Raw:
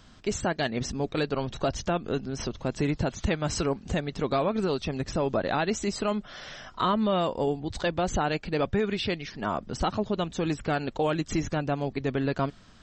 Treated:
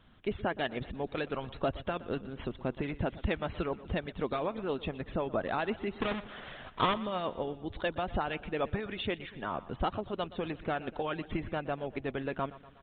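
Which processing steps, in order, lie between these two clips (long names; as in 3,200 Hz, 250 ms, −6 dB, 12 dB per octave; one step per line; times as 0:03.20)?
0:06.00–0:06.94: each half-wave held at its own peak
downsampling to 8,000 Hz
harmonic and percussive parts rebalanced harmonic −9 dB
repeating echo 121 ms, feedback 56%, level −17.5 dB
level −3.5 dB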